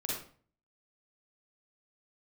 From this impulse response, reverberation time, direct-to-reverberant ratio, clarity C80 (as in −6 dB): 0.45 s, −5.0 dB, 5.5 dB